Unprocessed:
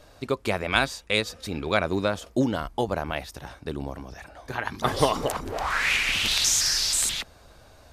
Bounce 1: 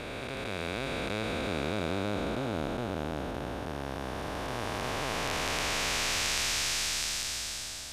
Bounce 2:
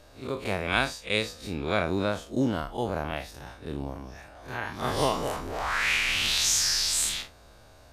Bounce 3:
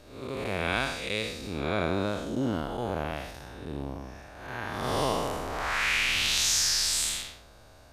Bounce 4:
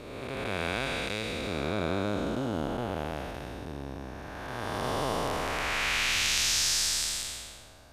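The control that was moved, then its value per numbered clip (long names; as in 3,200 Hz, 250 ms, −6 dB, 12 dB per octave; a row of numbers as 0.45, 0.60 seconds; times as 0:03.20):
spectrum smeared in time, width: 1,710, 87, 227, 607 milliseconds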